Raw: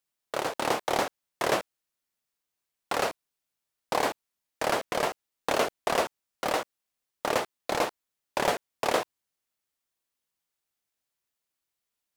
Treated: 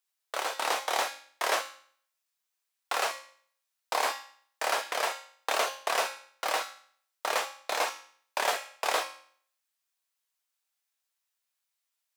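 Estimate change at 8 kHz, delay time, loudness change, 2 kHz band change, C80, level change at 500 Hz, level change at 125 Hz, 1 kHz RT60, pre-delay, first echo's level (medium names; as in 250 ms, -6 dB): +2.0 dB, no echo, -1.0 dB, +1.0 dB, 14.0 dB, -5.5 dB, under -25 dB, 0.55 s, 4 ms, no echo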